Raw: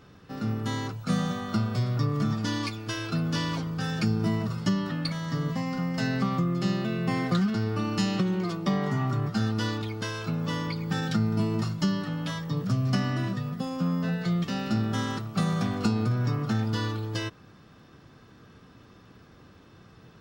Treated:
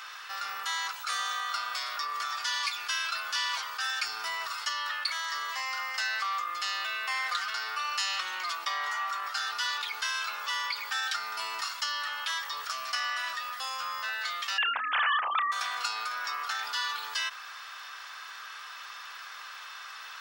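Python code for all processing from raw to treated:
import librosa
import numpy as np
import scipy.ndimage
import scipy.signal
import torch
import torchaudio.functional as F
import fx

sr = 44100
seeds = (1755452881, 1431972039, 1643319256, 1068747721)

y = fx.chain(x, sr, fx.sine_speech(),
    fx.doubler(ms=31.0, db=-13.0),
    fx.env_flatten(amount_pct=70), at=(14.58, 15.52))
y = scipy.signal.sosfilt(scipy.signal.butter(4, 1100.0, 'highpass', fs=sr, output='sos'), y)
y = fx.env_flatten(y, sr, amount_pct=50)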